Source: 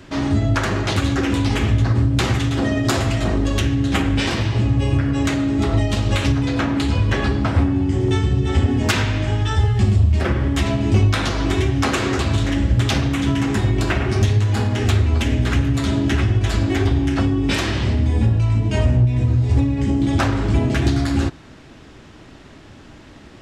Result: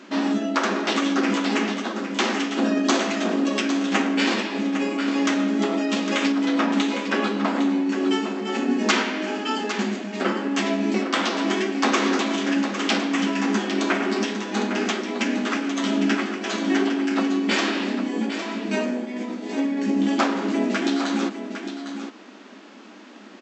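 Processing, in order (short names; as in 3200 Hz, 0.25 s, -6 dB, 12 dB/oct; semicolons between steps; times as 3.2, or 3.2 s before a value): formant shift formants -2 st; echo 0.806 s -9.5 dB; FFT band-pass 190–8100 Hz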